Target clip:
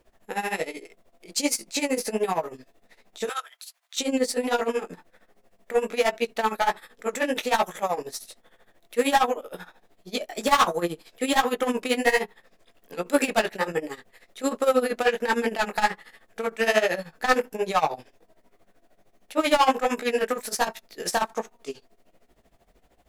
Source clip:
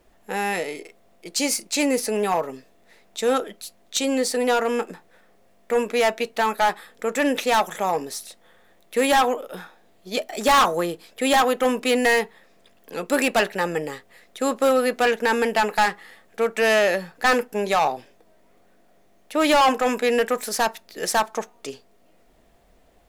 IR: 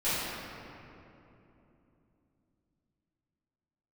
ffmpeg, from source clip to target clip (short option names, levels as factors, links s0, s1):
-filter_complex "[0:a]asettb=1/sr,asplit=3[s0][s1][s2];[s0]atrim=end=3.274[s3];[s1]atrim=start=3.27:end=3.97,asetpts=PTS-STARTPTS,afade=t=in:d=0.004:c=qsin,afade=t=out:st=0.696:d=0.004:c=qsin,highpass=f=1000:w=0.5412,highpass=f=1000:w=1.3066[s4];[s2]atrim=start=3.966[s5];[s3][s4]acrossfade=d=0.004:c1=hsin:c2=qsin[s6];[s6][s5]acrossfade=d=0.004:c1=qsin:c2=hsin,flanger=delay=16.5:depth=7.1:speed=1.3,tremolo=f=13:d=0.83,volume=1.41"